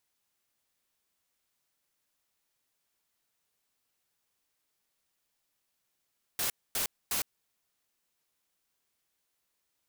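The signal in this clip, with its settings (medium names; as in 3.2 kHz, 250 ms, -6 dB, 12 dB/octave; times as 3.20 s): noise bursts white, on 0.11 s, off 0.25 s, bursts 3, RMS -31 dBFS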